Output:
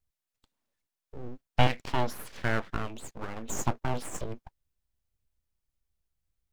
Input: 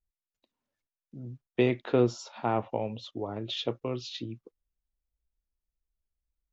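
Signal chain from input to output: 1.67–3.62 s: peaking EQ 280 Hz -14 dB 1.3 oct; full-wave rectifier; trim +4.5 dB

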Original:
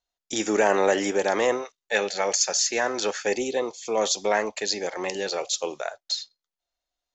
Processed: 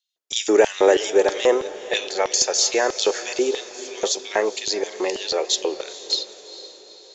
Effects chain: LFO high-pass square 3.1 Hz 380–3300 Hz; echo that smears into a reverb 451 ms, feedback 54%, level -15 dB; trim +1.5 dB

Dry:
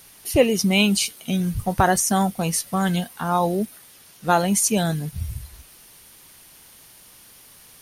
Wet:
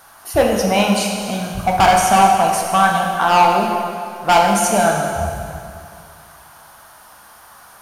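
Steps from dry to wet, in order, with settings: high-order bell 1 kHz +16 dB; hard clipper -7.5 dBFS, distortion -5 dB; plate-style reverb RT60 2.4 s, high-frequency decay 0.85×, DRR 0 dB; trim -2.5 dB

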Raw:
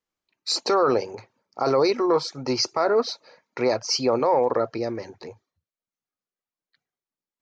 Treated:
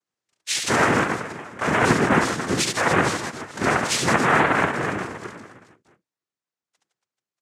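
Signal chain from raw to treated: reverse bouncing-ball echo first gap 70 ms, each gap 1.3×, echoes 5; noise-vocoded speech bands 3

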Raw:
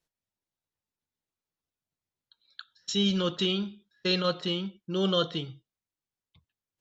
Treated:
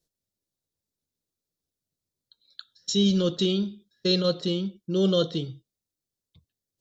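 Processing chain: high-order bell 1.5 kHz -11 dB 2.3 oct; trim +5 dB

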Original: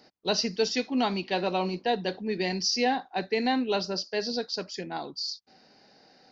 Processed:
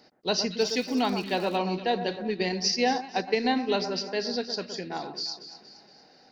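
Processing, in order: echo whose repeats swap between lows and highs 117 ms, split 1.7 kHz, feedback 69%, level -9 dB; 0.58–1.56 s: crackle 300 per s -37 dBFS; 2.28–3.76 s: transient shaper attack +3 dB, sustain -6 dB

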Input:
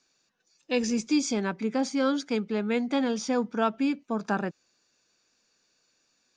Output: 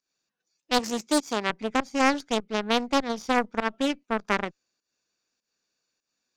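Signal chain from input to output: volume shaper 100 bpm, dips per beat 1, -13 dB, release 189 ms; Chebyshev shaper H 2 -9 dB, 7 -19 dB, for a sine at -11.5 dBFS; 0.79–1.50 s: high-pass 200 Hz 6 dB/octave; loudspeaker Doppler distortion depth 0.61 ms; trim +4 dB

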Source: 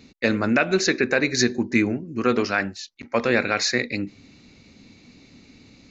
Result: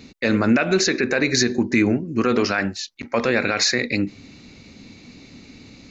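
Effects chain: peak limiter -14.5 dBFS, peak gain reduction 8.5 dB; trim +6 dB

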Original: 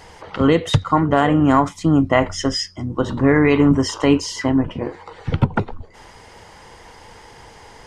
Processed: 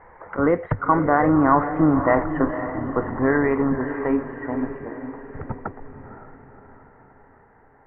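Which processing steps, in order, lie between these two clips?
Doppler pass-by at 1.76 s, 15 m/s, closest 12 m; peak limiter -9.5 dBFS, peak gain reduction 6 dB; steep low-pass 1.9 kHz 48 dB/octave; peaking EQ 120 Hz -8.5 dB 2.6 oct; echo that smears into a reverb 532 ms, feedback 50%, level -9.5 dB; trim +5 dB

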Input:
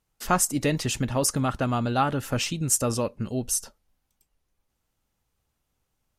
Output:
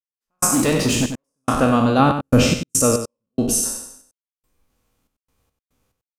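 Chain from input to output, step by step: spectral sustain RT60 0.74 s; 1.99–2.61 s: bass shelf 350 Hz +9 dB; in parallel at -2.5 dB: peak limiter -17 dBFS, peak gain reduction 10 dB; on the sum: small resonant body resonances 260/480/1100/2400 Hz, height 7 dB, ringing for 35 ms; 0.54–1.28 s: hard clipper -14.5 dBFS, distortion -17 dB; trance gate "..xxx..xxx.x.x" 71 bpm -60 dB; on a send: delay 94 ms -8.5 dB

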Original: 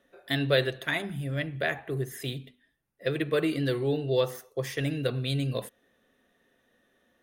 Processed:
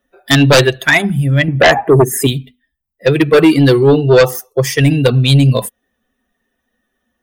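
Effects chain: expander on every frequency bin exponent 1.5; 1.48–2.27 s: graphic EQ 250/500/1000/4000/8000 Hz +9/+8/+9/-8/+7 dB; sine folder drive 10 dB, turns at -12 dBFS; trim +9 dB

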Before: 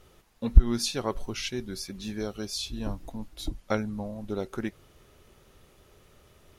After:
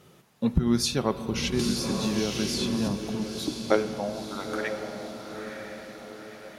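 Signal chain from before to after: high-pass sweep 150 Hz -> 2 kHz, 3.25–4.72 s; echo that smears into a reverb 959 ms, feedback 51%, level -6.5 dB; spring tank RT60 3.2 s, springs 44/50 ms, chirp 65 ms, DRR 12 dB; 1.59–2.88 s: three bands compressed up and down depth 100%; trim +2.5 dB

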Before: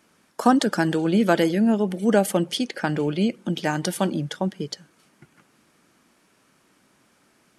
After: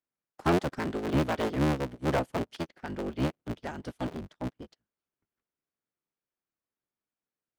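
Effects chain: cycle switcher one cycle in 3, inverted; saturation -17 dBFS, distortion -11 dB; treble shelf 6.1 kHz -11.5 dB; upward expansion 2.5:1, over -42 dBFS; trim -1.5 dB

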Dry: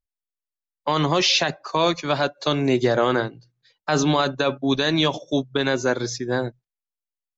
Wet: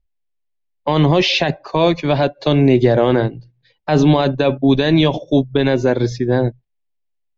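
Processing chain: low-pass 2.7 kHz 12 dB/octave; bass shelf 89 Hz +11.5 dB; in parallel at +1.5 dB: peak limiter -14 dBFS, peak gain reduction 6.5 dB; on the sum: peaking EQ 1.3 kHz -12 dB 0.66 oct; trim +2 dB

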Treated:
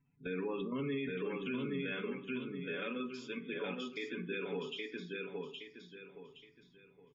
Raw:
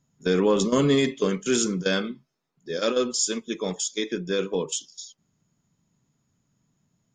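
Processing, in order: compression 3:1, threshold -31 dBFS, peak gain reduction 11 dB; four-pole ladder low-pass 2.8 kHz, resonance 60%; peaking EQ 590 Hz -8 dB 0.27 oct; spectral gate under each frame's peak -25 dB strong; comb 7 ms, depth 47%; feedback delay 818 ms, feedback 31%, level -4 dB; on a send at -9.5 dB: reverberation RT60 0.55 s, pre-delay 4 ms; on the sum: peak limiter -33.5 dBFS, peak gain reduction 7.5 dB; trim +4 dB

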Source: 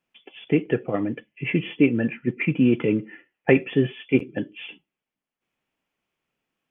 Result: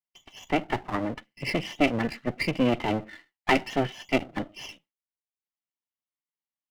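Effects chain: comb filter that takes the minimum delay 1 ms; gate with hold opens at -47 dBFS; bass shelf 140 Hz -9.5 dB

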